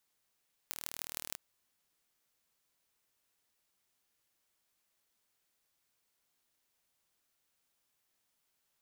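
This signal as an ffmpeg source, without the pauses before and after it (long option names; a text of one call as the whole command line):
ffmpeg -f lavfi -i "aevalsrc='0.355*eq(mod(n,1131),0)*(0.5+0.5*eq(mod(n,6786),0))':duration=0.66:sample_rate=44100" out.wav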